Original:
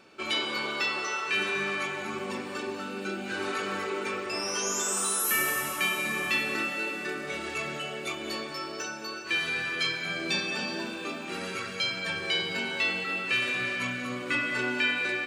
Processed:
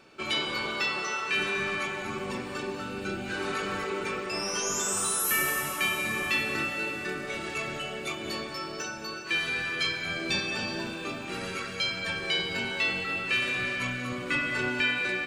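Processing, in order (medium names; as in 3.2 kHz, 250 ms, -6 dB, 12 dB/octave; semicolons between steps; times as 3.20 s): octave divider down 1 oct, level -6 dB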